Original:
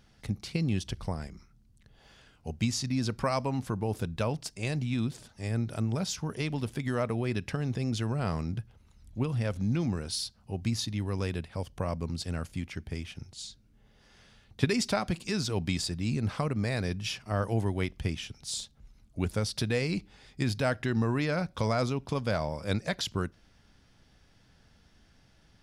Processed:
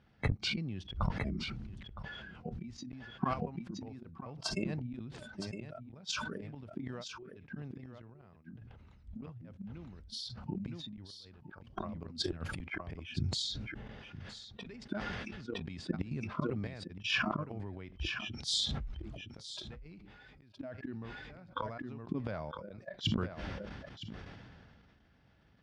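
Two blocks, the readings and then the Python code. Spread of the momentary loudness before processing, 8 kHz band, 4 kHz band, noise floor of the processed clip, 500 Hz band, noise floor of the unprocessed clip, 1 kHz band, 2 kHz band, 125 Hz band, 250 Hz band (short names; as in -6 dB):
9 LU, -9.0 dB, -1.5 dB, -61 dBFS, -11.0 dB, -63 dBFS, -6.5 dB, -4.0 dB, -10.0 dB, -8.5 dB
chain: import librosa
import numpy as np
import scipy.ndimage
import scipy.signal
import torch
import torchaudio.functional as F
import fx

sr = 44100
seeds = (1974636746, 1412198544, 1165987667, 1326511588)

p1 = scipy.signal.sosfilt(scipy.signal.butter(2, 2700.0, 'lowpass', fs=sr, output='sos'), x)
p2 = fx.gate_flip(p1, sr, shuts_db=-23.0, range_db=-40)
p3 = scipy.signal.sosfilt(scipy.signal.butter(2, 52.0, 'highpass', fs=sr, output='sos'), p2)
p4 = fx.over_compress(p3, sr, threshold_db=-42.0, ratio=-0.5)
p5 = fx.noise_reduce_blind(p4, sr, reduce_db=18)
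p6 = fx.step_gate(p5, sr, bpm=81, pattern='xx.xxx..x..x', floor_db=-12.0, edge_ms=4.5)
p7 = p6 + fx.echo_single(p6, sr, ms=963, db=-13.5, dry=0)
p8 = fx.sustainer(p7, sr, db_per_s=24.0)
y = p8 * librosa.db_to_amplitude(8.5)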